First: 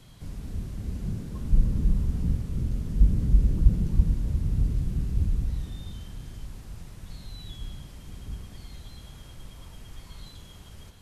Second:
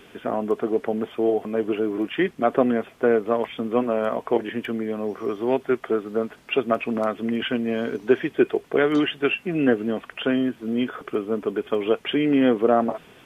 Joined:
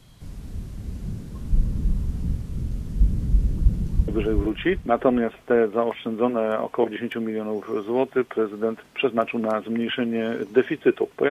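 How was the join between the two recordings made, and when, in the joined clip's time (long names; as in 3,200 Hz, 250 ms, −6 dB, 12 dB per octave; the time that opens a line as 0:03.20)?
first
0:03.70–0:04.08: delay throw 390 ms, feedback 30%, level −3 dB
0:04.08: continue with second from 0:01.61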